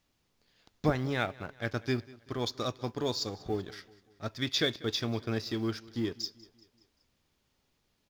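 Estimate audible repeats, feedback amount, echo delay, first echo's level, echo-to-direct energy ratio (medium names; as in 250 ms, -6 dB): 3, 51%, 192 ms, -21.5 dB, -20.0 dB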